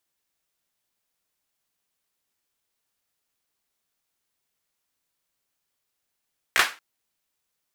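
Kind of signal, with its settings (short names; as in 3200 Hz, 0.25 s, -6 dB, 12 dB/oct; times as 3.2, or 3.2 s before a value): hand clap length 0.23 s, bursts 3, apart 16 ms, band 1600 Hz, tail 0.28 s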